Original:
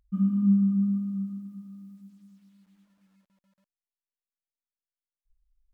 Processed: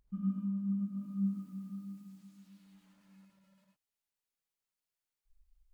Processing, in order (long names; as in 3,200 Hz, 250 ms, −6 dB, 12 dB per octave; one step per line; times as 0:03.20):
reversed playback
downward compressor 12 to 1, threshold −32 dBFS, peak gain reduction 15 dB
reversed playback
reverb whose tail is shaped and stops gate 130 ms rising, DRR −1 dB